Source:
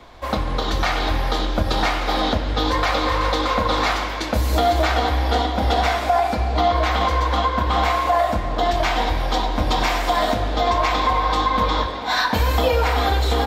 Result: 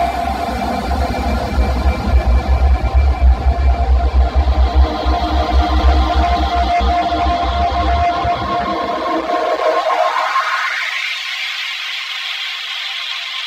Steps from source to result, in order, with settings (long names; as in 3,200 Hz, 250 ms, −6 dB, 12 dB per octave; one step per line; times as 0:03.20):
extreme stretch with random phases 18×, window 0.25 s, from 0:06.27
in parallel at −5.5 dB: sine wavefolder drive 9 dB, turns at −4.5 dBFS
on the sum: high-pass filter sweep 66 Hz → 2,600 Hz, 0:07.86–0:11.16
reverb reduction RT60 0.66 s
level −5 dB